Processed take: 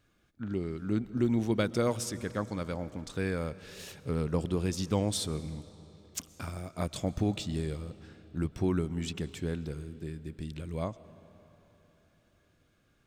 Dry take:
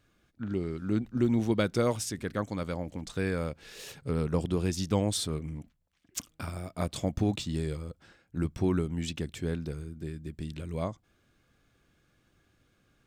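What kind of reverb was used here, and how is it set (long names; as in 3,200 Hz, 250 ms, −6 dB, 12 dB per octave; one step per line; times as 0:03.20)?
comb and all-pass reverb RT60 3.7 s, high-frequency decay 0.8×, pre-delay 85 ms, DRR 16.5 dB
level −1.5 dB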